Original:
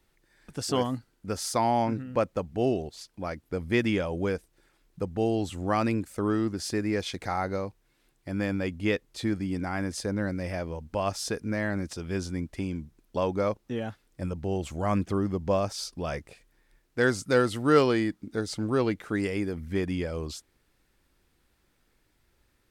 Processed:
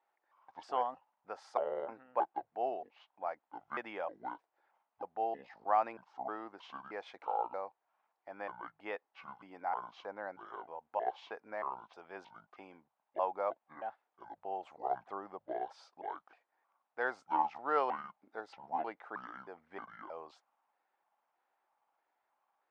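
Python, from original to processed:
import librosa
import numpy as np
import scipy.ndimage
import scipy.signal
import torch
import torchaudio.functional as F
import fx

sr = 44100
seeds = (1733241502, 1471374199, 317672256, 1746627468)

y = fx.pitch_trill(x, sr, semitones=-8.0, every_ms=314)
y = fx.ladder_bandpass(y, sr, hz=890.0, resonance_pct=60)
y = y * 10.0 ** (5.5 / 20.0)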